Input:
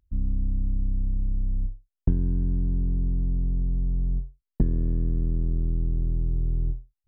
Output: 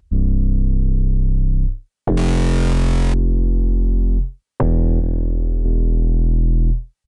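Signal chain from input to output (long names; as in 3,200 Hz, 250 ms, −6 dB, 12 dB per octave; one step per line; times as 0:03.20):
notch comb filter 350 Hz
0:02.17–0:03.14: log-companded quantiser 4 bits
sine wavefolder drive 13 dB, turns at −10.5 dBFS
downsampling to 22,050 Hz
0:05.00–0:05.65: saturating transformer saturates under 46 Hz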